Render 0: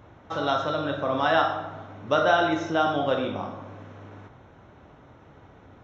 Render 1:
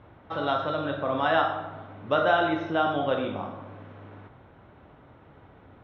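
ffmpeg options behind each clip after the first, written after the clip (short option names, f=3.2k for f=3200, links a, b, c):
-af "lowpass=f=3.8k:w=0.5412,lowpass=f=3.8k:w=1.3066,volume=-1.5dB"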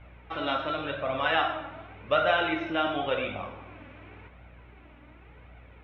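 -af "equalizer=f=2.4k:w=2:g=15,aeval=exprs='val(0)+0.00398*(sin(2*PI*60*n/s)+sin(2*PI*2*60*n/s)/2+sin(2*PI*3*60*n/s)/3+sin(2*PI*4*60*n/s)/4+sin(2*PI*5*60*n/s)/5)':c=same,flanger=delay=1.3:depth=2.3:regen=38:speed=0.9:shape=triangular"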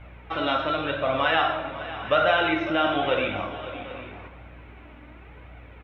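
-filter_complex "[0:a]asplit=2[a][b];[b]alimiter=limit=-19.5dB:level=0:latency=1,volume=-1.5dB[c];[a][c]amix=inputs=2:normalize=0,aecho=1:1:553|770|794:0.188|0.119|0.126"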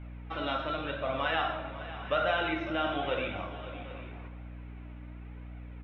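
-af "aeval=exprs='val(0)+0.0141*(sin(2*PI*60*n/s)+sin(2*PI*2*60*n/s)/2+sin(2*PI*3*60*n/s)/3+sin(2*PI*4*60*n/s)/4+sin(2*PI*5*60*n/s)/5)':c=same,volume=-8dB"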